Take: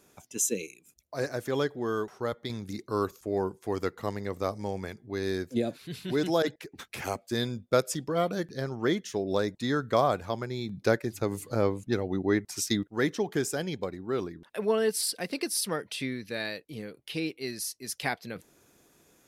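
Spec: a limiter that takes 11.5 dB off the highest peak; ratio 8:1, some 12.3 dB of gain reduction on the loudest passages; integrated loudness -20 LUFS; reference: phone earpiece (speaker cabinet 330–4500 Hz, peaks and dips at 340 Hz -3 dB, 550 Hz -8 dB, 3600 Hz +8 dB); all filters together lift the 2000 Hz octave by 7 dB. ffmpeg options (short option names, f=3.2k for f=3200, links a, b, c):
-af "equalizer=f=2k:t=o:g=8.5,acompressor=threshold=-30dB:ratio=8,alimiter=level_in=3.5dB:limit=-24dB:level=0:latency=1,volume=-3.5dB,highpass=330,equalizer=f=340:t=q:w=4:g=-3,equalizer=f=550:t=q:w=4:g=-8,equalizer=f=3.6k:t=q:w=4:g=8,lowpass=f=4.5k:w=0.5412,lowpass=f=4.5k:w=1.3066,volume=21.5dB"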